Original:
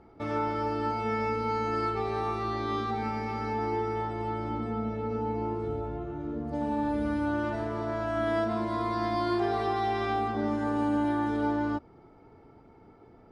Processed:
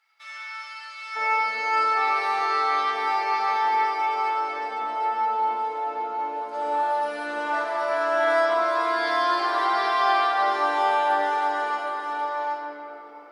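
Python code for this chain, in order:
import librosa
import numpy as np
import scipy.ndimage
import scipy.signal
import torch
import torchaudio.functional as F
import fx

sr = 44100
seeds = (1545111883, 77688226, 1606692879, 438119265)

y = fx.bessel_highpass(x, sr, hz=fx.steps((0.0, 2600.0), (1.15, 880.0)), order=4)
y = y + 10.0 ** (-4.5 / 20.0) * np.pad(y, (int(769 * sr / 1000.0), 0))[:len(y)]
y = fx.room_shoebox(y, sr, seeds[0], volume_m3=150.0, walls='hard', distance_m=0.7)
y = y * librosa.db_to_amplitude(6.0)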